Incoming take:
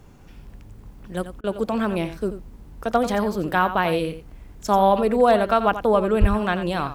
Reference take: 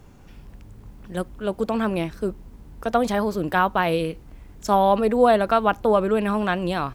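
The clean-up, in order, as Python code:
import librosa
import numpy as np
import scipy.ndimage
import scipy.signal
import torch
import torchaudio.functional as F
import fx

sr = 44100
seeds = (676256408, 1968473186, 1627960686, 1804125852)

y = fx.fix_declip(x, sr, threshold_db=-7.5)
y = fx.fix_deplosive(y, sr, at_s=(6.2,))
y = fx.fix_interpolate(y, sr, at_s=(1.41,), length_ms=28.0)
y = fx.fix_echo_inverse(y, sr, delay_ms=88, level_db=-11.5)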